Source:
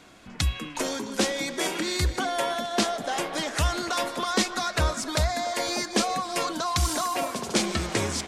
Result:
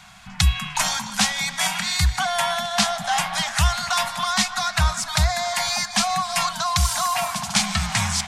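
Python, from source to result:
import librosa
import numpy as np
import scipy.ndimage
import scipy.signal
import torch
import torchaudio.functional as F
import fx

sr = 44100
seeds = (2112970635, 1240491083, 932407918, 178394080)

y = scipy.signal.sosfilt(scipy.signal.ellip(3, 1.0, 50, [190.0, 750.0], 'bandstop', fs=sr, output='sos'), x)
y = fx.rider(y, sr, range_db=10, speed_s=0.5)
y = F.gain(torch.from_numpy(y), 7.0).numpy()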